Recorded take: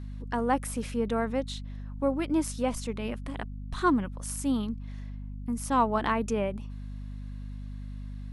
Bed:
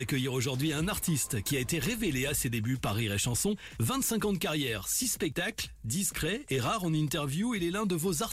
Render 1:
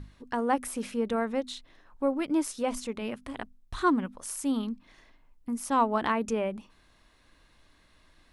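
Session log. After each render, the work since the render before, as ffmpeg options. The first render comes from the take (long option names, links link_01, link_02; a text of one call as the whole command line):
ffmpeg -i in.wav -af "bandreject=frequency=50:width_type=h:width=6,bandreject=frequency=100:width_type=h:width=6,bandreject=frequency=150:width_type=h:width=6,bandreject=frequency=200:width_type=h:width=6,bandreject=frequency=250:width_type=h:width=6" out.wav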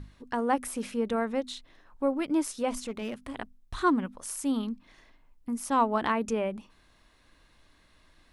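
ffmpeg -i in.wav -filter_complex "[0:a]asettb=1/sr,asplit=3[link_01][link_02][link_03];[link_01]atrim=end=2.784[link_04];[link_02]atrim=start=2.78:end=3.29,asetpts=PTS-STARTPTS,afade=type=in:duration=0.004:curve=qsin,afade=type=out:start_time=0.506:duration=0.004:curve=qsin,asoftclip=type=hard:threshold=-29dB[link_05];[link_03]atrim=start=3.286[link_06];[link_04][link_05]acrossfade=duration=0.004:curve1=hsin:curve2=qsin[link_07];[link_07][link_06]acrossfade=duration=0.004:curve1=qsin:curve2=hsin" out.wav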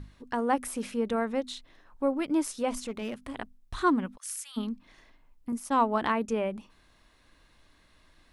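ffmpeg -i in.wav -filter_complex "[0:a]asplit=3[link_01][link_02][link_03];[link_01]afade=type=out:start_time=4.16:duration=0.02[link_04];[link_02]highpass=frequency=1500:width=0.5412,highpass=frequency=1500:width=1.3066,afade=type=in:start_time=4.16:duration=0.02,afade=type=out:start_time=4.56:duration=0.02[link_05];[link_03]afade=type=in:start_time=4.56:duration=0.02[link_06];[link_04][link_05][link_06]amix=inputs=3:normalize=0,asettb=1/sr,asplit=3[link_07][link_08][link_09];[link_07]atrim=end=5.524[link_10];[link_08]atrim=start=5.52:end=6.41,asetpts=PTS-STARTPTS,afade=type=in:duration=0.004:curve=qsin,afade=type=out:start_time=0.886:duration=0.004:curve=qsin,agate=range=-33dB:threshold=-35dB:ratio=3:release=100:detection=peak[link_11];[link_09]atrim=start=6.406[link_12];[link_10][link_11]acrossfade=duration=0.004:curve1=hsin:curve2=qsin[link_13];[link_13][link_12]acrossfade=duration=0.004:curve1=qsin:curve2=hsin" out.wav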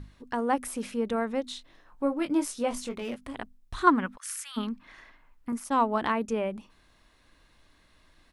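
ffmpeg -i in.wav -filter_complex "[0:a]asplit=3[link_01][link_02][link_03];[link_01]afade=type=out:start_time=1.44:duration=0.02[link_04];[link_02]asplit=2[link_05][link_06];[link_06]adelay=21,volume=-7dB[link_07];[link_05][link_07]amix=inputs=2:normalize=0,afade=type=in:start_time=1.44:duration=0.02,afade=type=out:start_time=3.15:duration=0.02[link_08];[link_03]afade=type=in:start_time=3.15:duration=0.02[link_09];[link_04][link_08][link_09]amix=inputs=3:normalize=0,asettb=1/sr,asplit=3[link_10][link_11][link_12];[link_10]atrim=end=3.874[link_13];[link_11]atrim=start=3.87:end=5.64,asetpts=PTS-STARTPTS,afade=type=in:duration=0.004:curve=qsin,afade=type=out:start_time=1.766:duration=0.004:curve=qsin,equalizer=frequency=1500:width=0.78:gain=10.5[link_14];[link_12]atrim=start=5.636[link_15];[link_13][link_14]acrossfade=duration=0.004:curve1=hsin:curve2=qsin[link_16];[link_16][link_15]acrossfade=duration=0.004:curve1=qsin:curve2=hsin" out.wav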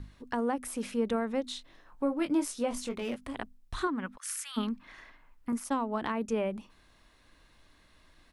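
ffmpeg -i in.wav -filter_complex "[0:a]alimiter=limit=-18.5dB:level=0:latency=1:release=416,acrossover=split=410[link_01][link_02];[link_02]acompressor=threshold=-30dB:ratio=6[link_03];[link_01][link_03]amix=inputs=2:normalize=0" out.wav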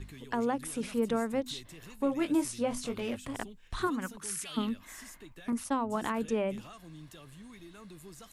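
ffmpeg -i in.wav -i bed.wav -filter_complex "[1:a]volume=-19.5dB[link_01];[0:a][link_01]amix=inputs=2:normalize=0" out.wav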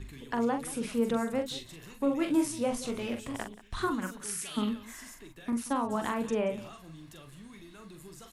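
ffmpeg -i in.wav -af "aecho=1:1:43|180:0.473|0.141" out.wav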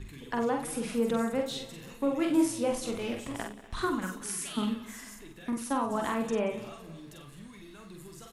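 ffmpeg -i in.wav -filter_complex "[0:a]asplit=2[link_01][link_02];[link_02]adelay=49,volume=-6dB[link_03];[link_01][link_03]amix=inputs=2:normalize=0,asplit=2[link_04][link_05];[link_05]adelay=244,lowpass=frequency=3300:poles=1,volume=-19dB,asplit=2[link_06][link_07];[link_07]adelay=244,lowpass=frequency=3300:poles=1,volume=0.5,asplit=2[link_08][link_09];[link_09]adelay=244,lowpass=frequency=3300:poles=1,volume=0.5,asplit=2[link_10][link_11];[link_11]adelay=244,lowpass=frequency=3300:poles=1,volume=0.5[link_12];[link_04][link_06][link_08][link_10][link_12]amix=inputs=5:normalize=0" out.wav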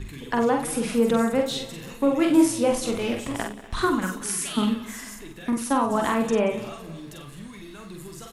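ffmpeg -i in.wav -af "volume=7.5dB" out.wav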